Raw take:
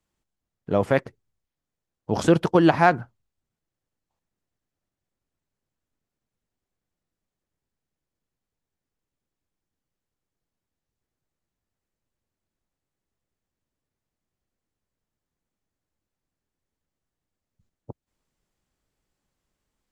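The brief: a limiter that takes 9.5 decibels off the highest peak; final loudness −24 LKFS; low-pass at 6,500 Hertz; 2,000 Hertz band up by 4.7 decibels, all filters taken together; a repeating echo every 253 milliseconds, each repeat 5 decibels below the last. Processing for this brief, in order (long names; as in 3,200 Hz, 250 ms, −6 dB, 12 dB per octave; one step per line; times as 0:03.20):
low-pass filter 6,500 Hz
parametric band 2,000 Hz +6.5 dB
brickwall limiter −10.5 dBFS
repeating echo 253 ms, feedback 56%, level −5 dB
level +1 dB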